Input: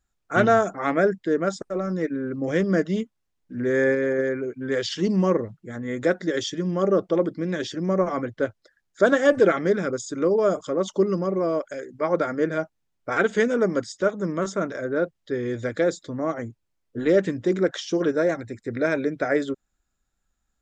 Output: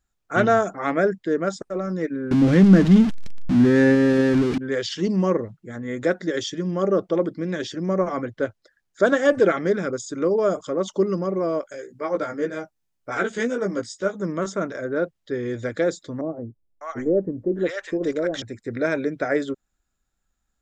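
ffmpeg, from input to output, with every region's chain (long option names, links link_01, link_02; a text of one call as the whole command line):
ffmpeg -i in.wav -filter_complex "[0:a]asettb=1/sr,asplit=3[link_01][link_02][link_03];[link_01]atrim=end=2.314[link_04];[link_02]atrim=start=2.31:end=4.58,asetpts=PTS-STARTPTS,afade=type=in:duration=0.004:curve=qsin,afade=type=out:start_time=2.266:duration=0.004:curve=qsin,aeval=exprs='val(0)+0.5*0.0631*sgn(val(0))':channel_layout=same,lowpass=5900,lowshelf=frequency=330:width_type=q:width=1.5:gain=8[link_05];[link_03]atrim=start=4.576[link_06];[link_04][link_05]acrossfade=duration=0.004:curve1=hsin:curve2=qsin[link_07];[link_07][link_06]acrossfade=duration=0.004:curve1=qsin:curve2=hsin,asettb=1/sr,asplit=3[link_08][link_09][link_10];[link_08]atrim=end=11.614[link_11];[link_09]atrim=start=11.61:end=14.2,asetpts=PTS-STARTPTS,afade=type=in:duration=0.004:curve=qsin,afade=type=out:start_time=2.586:duration=0.004:curve=qsin,highshelf=frequency=6000:gain=7.5,flanger=delay=15:depth=2.8:speed=2[link_12];[link_10]atrim=start=14.196[link_13];[link_11][link_12]acrossfade=duration=0.004:curve1=hsin:curve2=qsin[link_14];[link_14][link_13]acrossfade=duration=0.004:curve1=qsin:curve2=hsin,asettb=1/sr,asplit=3[link_15][link_16][link_17];[link_15]atrim=end=16.214[link_18];[link_16]atrim=start=16.21:end=18.42,asetpts=PTS-STARTPTS,afade=type=in:duration=0.004:curve=qsin,afade=type=out:start_time=2.206:duration=0.004:curve=qsin,asubboost=boost=10.5:cutoff=53,acrossover=split=750[link_19][link_20];[link_20]adelay=600[link_21];[link_19][link_21]amix=inputs=2:normalize=0,atrim=end_sample=97461[link_22];[link_17]atrim=start=18.416[link_23];[link_18][link_22]acrossfade=duration=0.004:curve1=hsin:curve2=qsin[link_24];[link_24][link_23]acrossfade=duration=0.004:curve1=qsin:curve2=hsin" out.wav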